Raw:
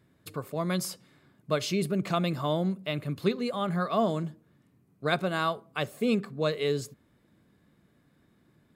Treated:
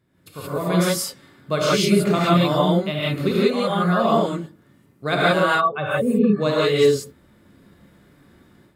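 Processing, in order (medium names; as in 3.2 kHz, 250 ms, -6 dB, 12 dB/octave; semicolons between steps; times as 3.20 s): 5.42–6.34 s: spectral contrast enhancement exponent 1.9; gated-style reverb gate 200 ms rising, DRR -7.5 dB; level rider gain up to 9.5 dB; trim -4 dB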